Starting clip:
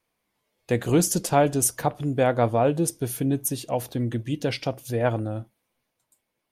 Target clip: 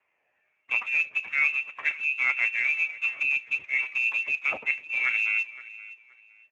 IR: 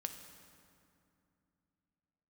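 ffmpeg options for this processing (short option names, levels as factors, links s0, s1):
-af "afftfilt=real='re*pow(10,7/40*sin(2*PI*(0.8*log(max(b,1)*sr/1024/100)/log(2)-(1.3)*(pts-256)/sr)))':imag='im*pow(10,7/40*sin(2*PI*(0.8*log(max(b,1)*sr/1024/100)/log(2)-(1.3)*(pts-256)/sr)))':win_size=1024:overlap=0.75,bandreject=f=250.4:t=h:w=4,bandreject=f=500.8:t=h:w=4,areverse,acompressor=threshold=0.0398:ratio=8,areverse,aecho=1:1:519|1038:0.126|0.0302,lowpass=f=2400:t=q:w=0.5098,lowpass=f=2400:t=q:w=0.6013,lowpass=f=2400:t=q:w=0.9,lowpass=f=2400:t=q:w=2.563,afreqshift=-2800,volume=2.11" -ar 32000 -c:a libspeex -b:a 15k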